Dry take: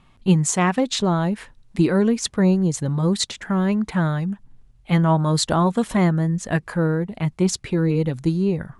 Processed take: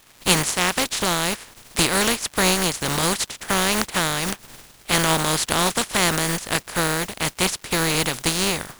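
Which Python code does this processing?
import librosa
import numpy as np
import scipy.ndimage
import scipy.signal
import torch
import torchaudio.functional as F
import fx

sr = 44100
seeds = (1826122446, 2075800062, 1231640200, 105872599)

y = fx.spec_flatten(x, sr, power=0.29)
y = fx.recorder_agc(y, sr, target_db=-6.0, rise_db_per_s=8.2, max_gain_db=30)
y = fx.dmg_crackle(y, sr, seeds[0], per_s=280.0, level_db=-34.0)
y = y * 10.0 ** (-2.0 / 20.0)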